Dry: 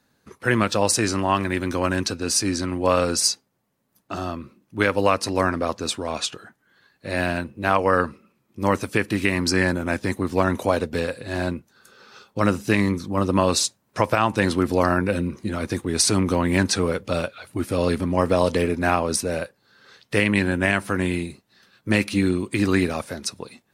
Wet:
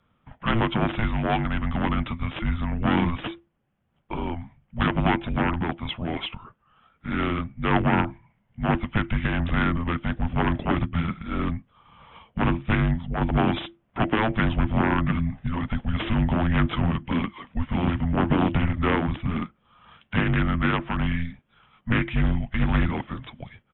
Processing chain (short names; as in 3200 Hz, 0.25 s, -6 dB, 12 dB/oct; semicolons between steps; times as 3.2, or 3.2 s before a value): one-sided fold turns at -18 dBFS; downsampling 8000 Hz; frequency shift -340 Hz